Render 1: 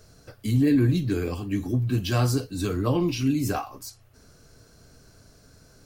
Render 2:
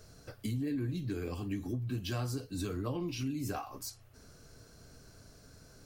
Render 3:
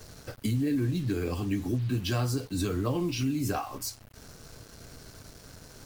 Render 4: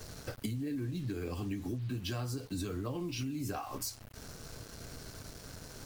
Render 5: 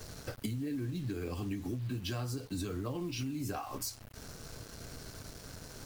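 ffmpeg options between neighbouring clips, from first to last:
ffmpeg -i in.wav -af "acompressor=threshold=-32dB:ratio=4,volume=-2.5dB" out.wav
ffmpeg -i in.wav -af "acrusher=bits=8:mix=0:aa=0.5,volume=7dB" out.wav
ffmpeg -i in.wav -af "acompressor=threshold=-36dB:ratio=5,volume=1dB" out.wav
ffmpeg -i in.wav -af "acrusher=bits=7:mode=log:mix=0:aa=0.000001" out.wav

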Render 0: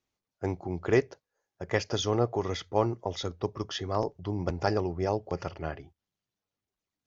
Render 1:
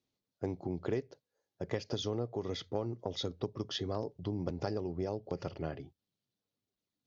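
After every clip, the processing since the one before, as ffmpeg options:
ffmpeg -i in.wav -af "equalizer=frequency=125:width_type=o:width=1:gain=9,equalizer=frequency=250:width_type=o:width=1:gain=9,equalizer=frequency=500:width_type=o:width=1:gain=7,equalizer=frequency=4000:width_type=o:width=1:gain=10,acompressor=threshold=-23dB:ratio=6,volume=-8.5dB" out.wav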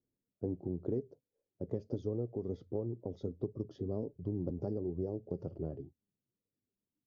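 ffmpeg -i in.wav -af "firequalizer=gain_entry='entry(380,0);entry(800,-11);entry(2000,-22)':delay=0.05:min_phase=1,flanger=delay=1.6:depth=3.6:regen=72:speed=1.4:shape=triangular,equalizer=frequency=2300:width=0.55:gain=-9,volume=5.5dB" out.wav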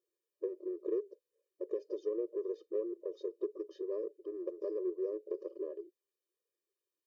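ffmpeg -i in.wav -filter_complex "[0:a]asplit=2[link_01][link_02];[link_02]asoftclip=type=tanh:threshold=-38dB,volume=-10dB[link_03];[link_01][link_03]amix=inputs=2:normalize=0,afftfilt=real='re*eq(mod(floor(b*sr/1024/320),2),1)':imag='im*eq(mod(floor(b*sr/1024/320),2),1)':win_size=1024:overlap=0.75,volume=2dB" out.wav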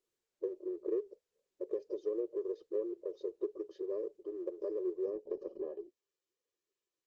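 ffmpeg -i in.wav -ar 48000 -c:a libopus -b:a 16k out.opus

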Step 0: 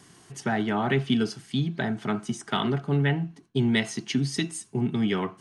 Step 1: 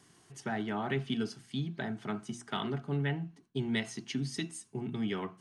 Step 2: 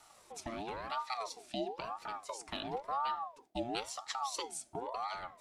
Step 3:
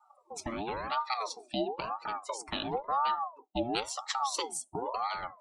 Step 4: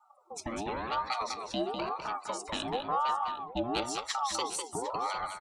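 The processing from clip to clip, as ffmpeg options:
ffmpeg -i in.wav -af "bandreject=frequency=60:width_type=h:width=6,bandreject=frequency=120:width_type=h:width=6,bandreject=frequency=180:width_type=h:width=6,bandreject=frequency=240:width_type=h:width=6,volume=-8.5dB" out.wav
ffmpeg -i in.wav -filter_complex "[0:a]acrossover=split=140|3000[link_01][link_02][link_03];[link_02]acompressor=threshold=-44dB:ratio=6[link_04];[link_01][link_04][link_03]amix=inputs=3:normalize=0,equalizer=frequency=1100:width=0.88:gain=-4.5,aeval=exprs='val(0)*sin(2*PI*760*n/s+760*0.4/0.97*sin(2*PI*0.97*n/s))':channel_layout=same,volume=5dB" out.wav
ffmpeg -i in.wav -af "afftdn=noise_reduction=34:noise_floor=-55,bandreject=frequency=680:width=12,volume=6dB" out.wav
ffmpeg -i in.wav -filter_complex "[0:a]asoftclip=type=tanh:threshold=-18.5dB,asplit=2[link_01][link_02];[link_02]aecho=0:1:201|753:0.501|0.188[link_03];[link_01][link_03]amix=inputs=2:normalize=0" out.wav

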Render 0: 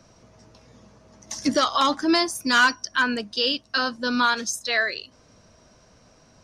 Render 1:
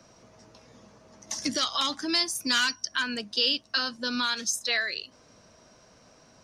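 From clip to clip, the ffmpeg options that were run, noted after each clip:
ffmpeg -i in.wav -filter_complex "[0:a]lowshelf=frequency=120:gain=-10,acrossover=split=190|2100[link_01][link_02][link_03];[link_02]acompressor=threshold=-33dB:ratio=6[link_04];[link_01][link_04][link_03]amix=inputs=3:normalize=0" out.wav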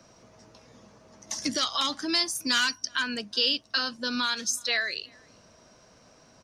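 ffmpeg -i in.wav -filter_complex "[0:a]asplit=2[link_01][link_02];[link_02]adelay=373.2,volume=-28dB,highshelf=frequency=4000:gain=-8.4[link_03];[link_01][link_03]amix=inputs=2:normalize=0" out.wav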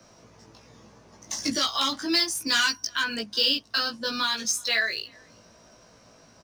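ffmpeg -i in.wav -filter_complex "[0:a]acrossover=split=290|1600|2500[link_01][link_02][link_03][link_04];[link_04]acrusher=bits=5:mode=log:mix=0:aa=0.000001[link_05];[link_01][link_02][link_03][link_05]amix=inputs=4:normalize=0,asplit=2[link_06][link_07];[link_07]adelay=18,volume=-2dB[link_08];[link_06][link_08]amix=inputs=2:normalize=0" out.wav

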